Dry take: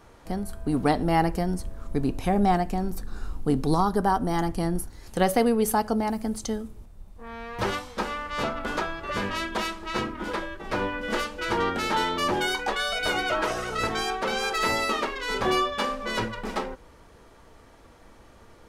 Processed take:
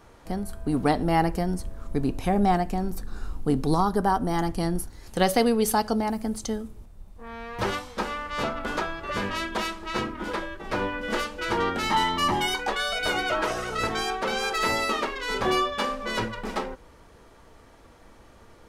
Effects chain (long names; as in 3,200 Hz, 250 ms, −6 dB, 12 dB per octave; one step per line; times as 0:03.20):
0:04.44–0:06.02: dynamic equaliser 4,300 Hz, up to +7 dB, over −46 dBFS, Q 0.96
0:11.83–0:12.54: comb filter 1 ms, depth 62%